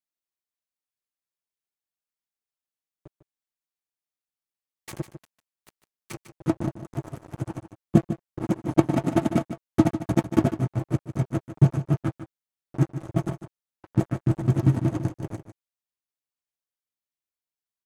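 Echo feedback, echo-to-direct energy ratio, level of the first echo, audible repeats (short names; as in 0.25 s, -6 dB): no steady repeat, -11.5 dB, -11.5 dB, 1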